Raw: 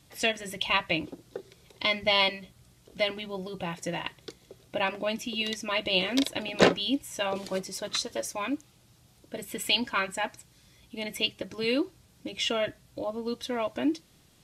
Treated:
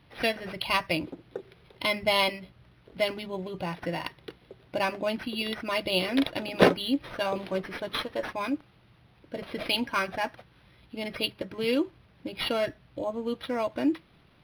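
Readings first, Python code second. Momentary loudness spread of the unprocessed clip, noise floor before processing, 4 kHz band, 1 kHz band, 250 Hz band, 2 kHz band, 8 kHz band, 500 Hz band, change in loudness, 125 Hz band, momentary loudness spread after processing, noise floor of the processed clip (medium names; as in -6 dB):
15 LU, -61 dBFS, -2.5 dB, +1.0 dB, +1.5 dB, -1.0 dB, -9.0 dB, +1.5 dB, 0.0 dB, +1.5 dB, 14 LU, -60 dBFS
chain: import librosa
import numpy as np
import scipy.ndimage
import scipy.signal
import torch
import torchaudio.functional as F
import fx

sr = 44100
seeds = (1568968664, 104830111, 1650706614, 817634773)

y = np.interp(np.arange(len(x)), np.arange(len(x))[::6], x[::6])
y = y * 10.0 ** (1.5 / 20.0)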